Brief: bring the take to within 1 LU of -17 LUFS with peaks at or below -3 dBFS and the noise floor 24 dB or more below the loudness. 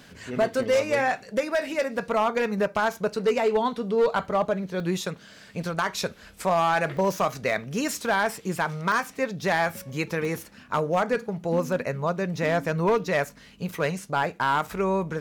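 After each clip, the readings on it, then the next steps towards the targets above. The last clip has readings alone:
clipped samples 1.0%; clipping level -16.0 dBFS; dropouts 6; longest dropout 1.1 ms; loudness -26.0 LUFS; peak level -16.0 dBFS; loudness target -17.0 LUFS
-> clip repair -16 dBFS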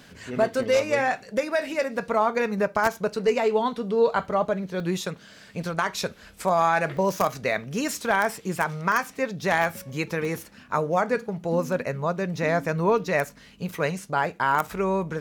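clipped samples 0.0%; dropouts 6; longest dropout 1.1 ms
-> interpolate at 0.63/4.80/6.97/8.92/10.25/13.99 s, 1.1 ms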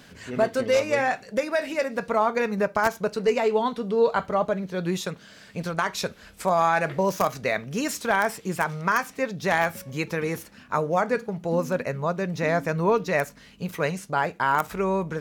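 dropouts 0; loudness -25.5 LUFS; peak level -7.0 dBFS; loudness target -17.0 LUFS
-> trim +8.5 dB; peak limiter -3 dBFS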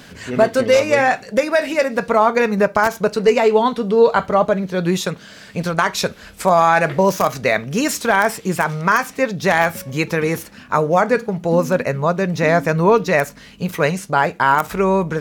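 loudness -17.5 LUFS; peak level -3.0 dBFS; noise floor -42 dBFS

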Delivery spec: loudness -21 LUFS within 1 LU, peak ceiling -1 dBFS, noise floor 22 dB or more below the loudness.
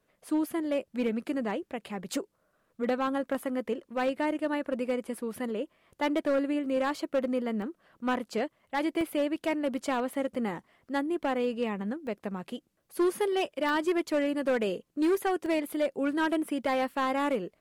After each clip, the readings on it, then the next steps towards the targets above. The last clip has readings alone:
clipped samples 1.6%; clipping level -21.5 dBFS; dropouts 5; longest dropout 1.2 ms; loudness -30.5 LUFS; peak level -21.5 dBFS; loudness target -21.0 LUFS
-> clip repair -21.5 dBFS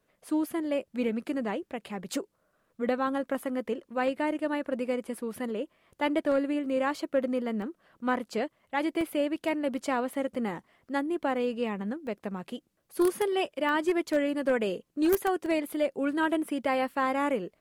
clipped samples 0.0%; dropouts 5; longest dropout 1.2 ms
-> interpolate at 7.62/9.01/12.07/13.69/15.46 s, 1.2 ms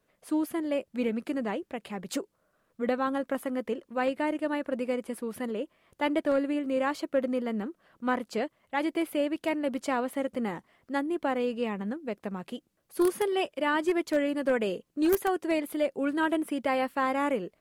dropouts 0; loudness -30.0 LUFS; peak level -12.5 dBFS; loudness target -21.0 LUFS
-> trim +9 dB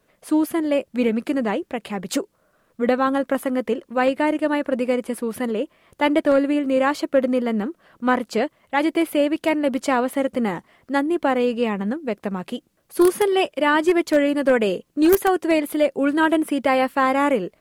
loudness -21.5 LUFS; peak level -3.5 dBFS; noise floor -66 dBFS

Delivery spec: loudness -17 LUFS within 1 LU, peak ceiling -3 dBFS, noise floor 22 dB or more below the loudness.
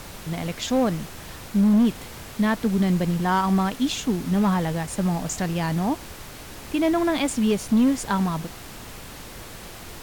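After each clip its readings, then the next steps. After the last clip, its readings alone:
clipped samples 1.1%; clipping level -14.0 dBFS; noise floor -40 dBFS; noise floor target -46 dBFS; loudness -23.5 LUFS; peak level -14.0 dBFS; loudness target -17.0 LUFS
-> clip repair -14 dBFS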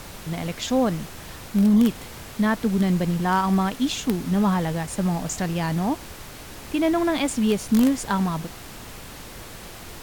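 clipped samples 0.0%; noise floor -40 dBFS; noise floor target -45 dBFS
-> noise print and reduce 6 dB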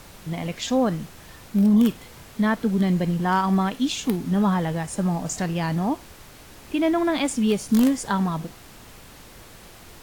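noise floor -46 dBFS; loudness -23.0 LUFS; peak level -5.5 dBFS; loudness target -17.0 LUFS
-> trim +6 dB; peak limiter -3 dBFS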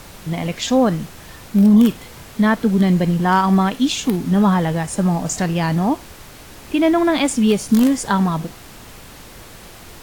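loudness -17.5 LUFS; peak level -3.0 dBFS; noise floor -40 dBFS

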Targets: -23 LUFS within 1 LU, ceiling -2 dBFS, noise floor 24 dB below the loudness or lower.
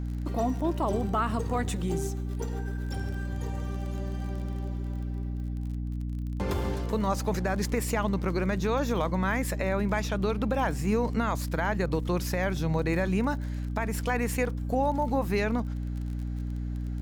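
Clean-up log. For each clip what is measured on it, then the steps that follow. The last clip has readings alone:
tick rate 27 per s; hum 60 Hz; highest harmonic 300 Hz; hum level -30 dBFS; loudness -30.0 LUFS; peak level -14.0 dBFS; loudness target -23.0 LUFS
-> de-click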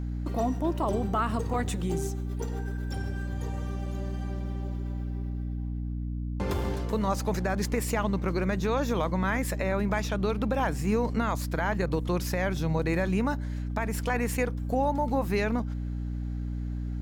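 tick rate 0.29 per s; hum 60 Hz; highest harmonic 300 Hz; hum level -30 dBFS
-> hum notches 60/120/180/240/300 Hz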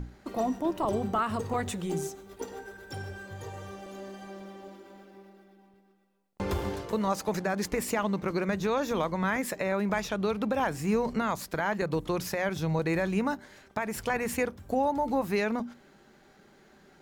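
hum not found; loudness -30.5 LUFS; peak level -15.5 dBFS; loudness target -23.0 LUFS
-> trim +7.5 dB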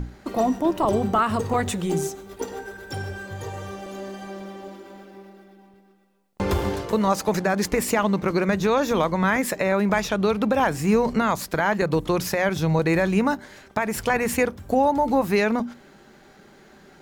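loudness -23.0 LUFS; peak level -8.0 dBFS; noise floor -52 dBFS

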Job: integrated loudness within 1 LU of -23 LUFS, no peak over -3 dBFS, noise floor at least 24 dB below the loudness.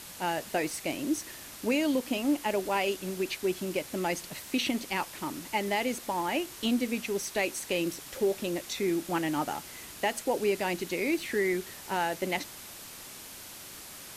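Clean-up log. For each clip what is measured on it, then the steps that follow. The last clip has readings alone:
noise floor -46 dBFS; noise floor target -55 dBFS; loudness -31.0 LUFS; peak level -15.5 dBFS; loudness target -23.0 LUFS
-> noise reduction 9 dB, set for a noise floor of -46 dBFS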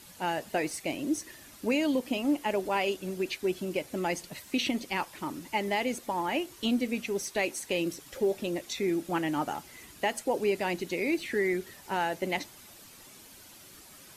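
noise floor -52 dBFS; noise floor target -55 dBFS
-> noise reduction 6 dB, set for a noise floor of -52 dBFS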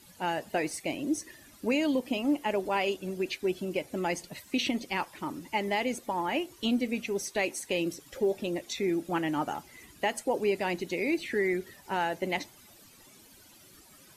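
noise floor -56 dBFS; loudness -31.5 LUFS; peak level -16.0 dBFS; loudness target -23.0 LUFS
-> trim +8.5 dB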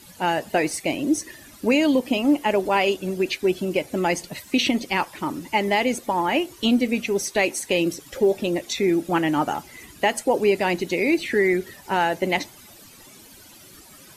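loudness -23.0 LUFS; peak level -7.5 dBFS; noise floor -47 dBFS

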